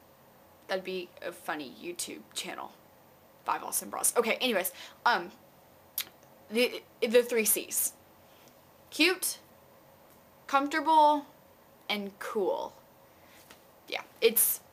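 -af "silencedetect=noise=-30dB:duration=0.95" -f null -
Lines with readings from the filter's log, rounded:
silence_start: 7.88
silence_end: 8.95 | silence_duration: 1.07
silence_start: 9.32
silence_end: 10.49 | silence_duration: 1.17
silence_start: 12.66
silence_end: 13.92 | silence_duration: 1.26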